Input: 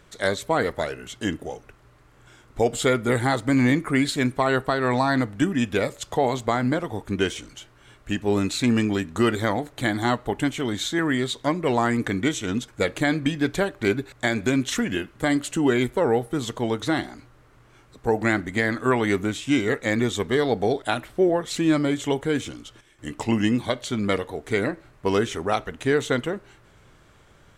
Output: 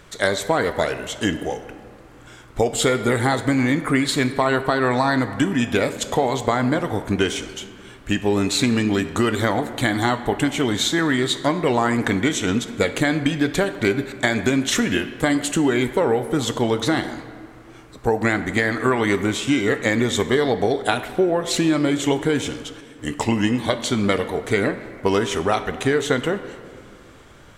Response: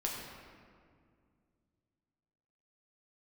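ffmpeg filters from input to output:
-filter_complex "[0:a]acompressor=threshold=0.0794:ratio=6,asplit=2[s0][s1];[1:a]atrim=start_sample=2205,lowshelf=f=270:g=-11.5[s2];[s1][s2]afir=irnorm=-1:irlink=0,volume=0.398[s3];[s0][s3]amix=inputs=2:normalize=0,volume=1.78"

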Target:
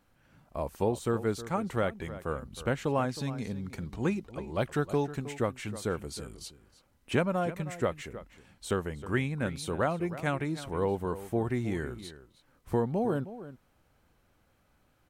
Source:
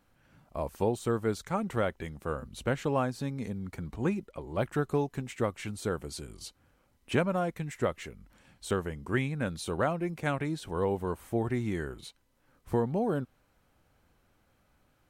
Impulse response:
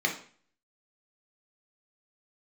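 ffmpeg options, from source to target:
-filter_complex "[0:a]asettb=1/sr,asplit=3[s0][s1][s2];[s0]atrim=end=3.094[s3];[s1]atrim=start=3.09:end=5.17,asetpts=PTS-STARTPTS,afade=t=in:d=0.004:c=qsin,afade=t=out:st=2.076:d=0.004:c=qsin,equalizer=f=4600:w=0.77:g=5.5[s4];[s2]atrim=start=5.166[s5];[s3][s4]acrossfade=d=0.004:c1=hsin:c2=qsin[s6];[s6][s5]acrossfade=d=0.004:c1=qsin:c2=hsin,asplit=2[s7][s8];[s8]adelay=314.9,volume=0.2,highshelf=f=4000:g=-7.08[s9];[s7][s9]amix=inputs=2:normalize=0"

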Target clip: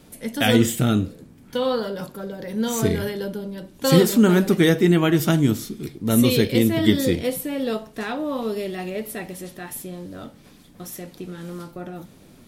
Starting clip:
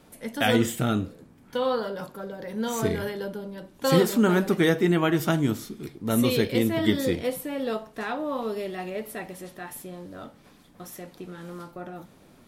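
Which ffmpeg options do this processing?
-af "equalizer=f=1000:w=0.57:g=-7,volume=2.24"

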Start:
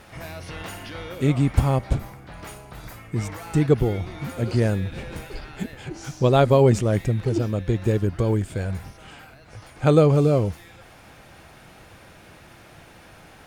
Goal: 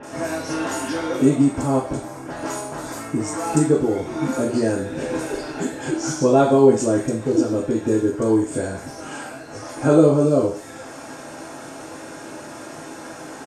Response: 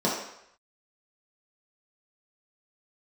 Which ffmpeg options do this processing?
-filter_complex "[0:a]acompressor=threshold=0.02:ratio=2,acrusher=bits=10:mix=0:aa=0.000001,lowpass=8700,bass=f=250:g=1,treble=f=4000:g=13,acrossover=split=2700[s0][s1];[s1]adelay=30[s2];[s0][s2]amix=inputs=2:normalize=0[s3];[1:a]atrim=start_sample=2205,asetrate=66150,aresample=44100[s4];[s3][s4]afir=irnorm=-1:irlink=0,volume=0.891"

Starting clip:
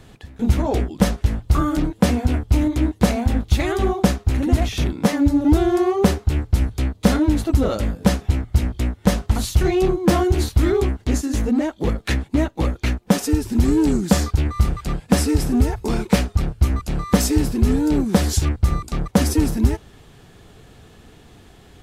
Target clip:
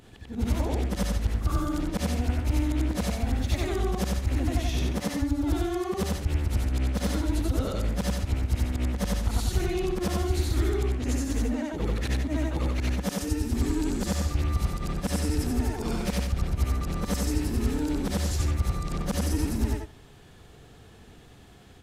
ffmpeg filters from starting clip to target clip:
-filter_complex "[0:a]afftfilt=real='re':imag='-im':win_size=8192:overlap=0.75,acrossover=split=82|400|1100|3300[s0][s1][s2][s3][s4];[s0]acompressor=threshold=0.0708:ratio=4[s5];[s1]acompressor=threshold=0.0316:ratio=4[s6];[s2]acompressor=threshold=0.0141:ratio=4[s7];[s3]acompressor=threshold=0.00794:ratio=4[s8];[s4]acompressor=threshold=0.0141:ratio=4[s9];[s5][s6][s7][s8][s9]amix=inputs=5:normalize=0"

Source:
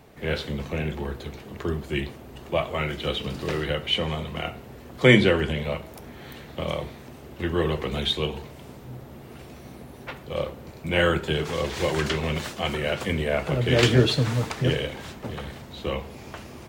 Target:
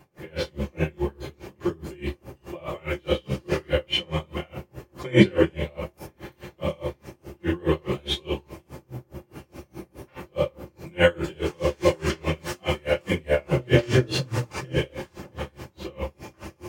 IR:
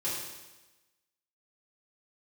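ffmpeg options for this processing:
-filter_complex "[0:a]equalizer=f=3700:t=o:w=0.31:g=-7.5[s0];[1:a]atrim=start_sample=2205,atrim=end_sample=3969[s1];[s0][s1]afir=irnorm=-1:irlink=0,aeval=exprs='val(0)*pow(10,-30*(0.5-0.5*cos(2*PI*4.8*n/s))/20)':c=same,volume=1.12"

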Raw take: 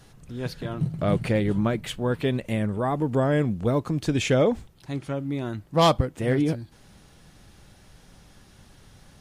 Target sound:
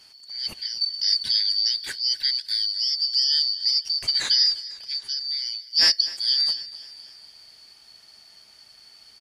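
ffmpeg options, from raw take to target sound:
-af "afftfilt=real='real(if(lt(b,272),68*(eq(floor(b/68),0)*3+eq(floor(b/68),1)*2+eq(floor(b/68),2)*1+eq(floor(b/68),3)*0)+mod(b,68),b),0)':imag='imag(if(lt(b,272),68*(eq(floor(b/68),0)*3+eq(floor(b/68),1)*2+eq(floor(b/68),2)*1+eq(floor(b/68),3)*0)+mod(b,68),b),0)':win_size=2048:overlap=0.75,adynamicequalizer=threshold=0.00501:dfrequency=9900:dqfactor=2.3:tfrequency=9900:tqfactor=2.3:attack=5:release=100:ratio=0.375:range=2:mode=boostabove:tftype=bell,aecho=1:1:249|498|747|996|1245:0.126|0.0718|0.0409|0.0233|0.0133"

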